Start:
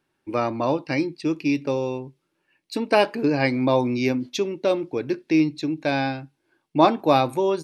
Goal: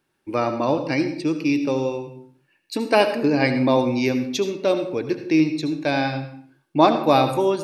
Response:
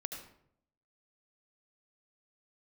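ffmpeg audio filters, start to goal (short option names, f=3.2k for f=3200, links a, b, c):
-filter_complex "[0:a]asplit=2[a][b];[1:a]atrim=start_sample=2205,afade=t=out:st=0.43:d=0.01,atrim=end_sample=19404,highshelf=f=6.3k:g=8[c];[b][c]afir=irnorm=-1:irlink=0,volume=2.5dB[d];[a][d]amix=inputs=2:normalize=0,volume=-5dB"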